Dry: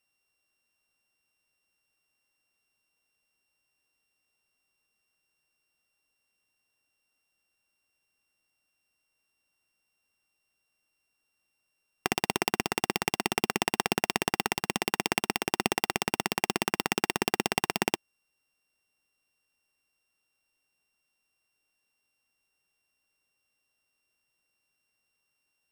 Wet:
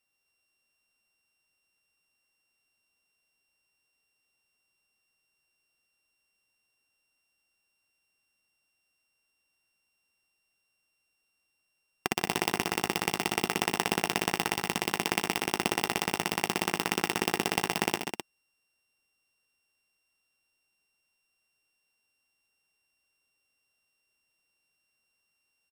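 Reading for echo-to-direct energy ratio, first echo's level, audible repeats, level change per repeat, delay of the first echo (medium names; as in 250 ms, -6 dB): -5.0 dB, -17.5 dB, 3, no regular repeats, 54 ms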